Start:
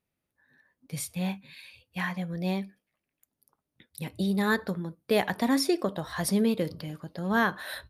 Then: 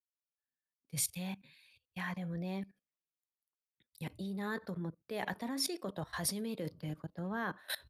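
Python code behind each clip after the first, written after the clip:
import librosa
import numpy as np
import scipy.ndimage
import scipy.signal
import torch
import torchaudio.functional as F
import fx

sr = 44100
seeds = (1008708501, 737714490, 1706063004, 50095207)

y = fx.level_steps(x, sr, step_db=19)
y = fx.band_widen(y, sr, depth_pct=70)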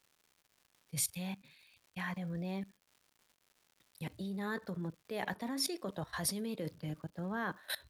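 y = fx.dmg_crackle(x, sr, seeds[0], per_s=230.0, level_db=-54.0)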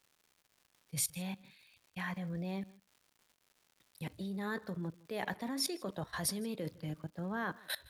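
y = x + 10.0 ** (-23.0 / 20.0) * np.pad(x, (int(160 * sr / 1000.0), 0))[:len(x)]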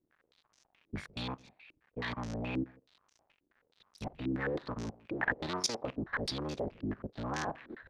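y = fx.cycle_switch(x, sr, every=3, mode='inverted')
y = fx.filter_held_lowpass(y, sr, hz=9.4, low_hz=320.0, high_hz=6000.0)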